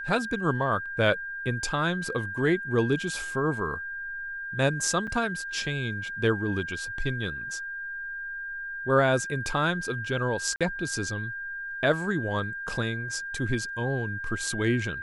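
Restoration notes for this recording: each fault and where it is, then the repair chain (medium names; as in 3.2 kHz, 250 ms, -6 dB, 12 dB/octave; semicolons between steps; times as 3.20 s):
whine 1.6 kHz -33 dBFS
5.07–5.08 s: dropout 5.9 ms
10.56–10.61 s: dropout 46 ms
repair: band-stop 1.6 kHz, Q 30; interpolate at 5.07 s, 5.9 ms; interpolate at 10.56 s, 46 ms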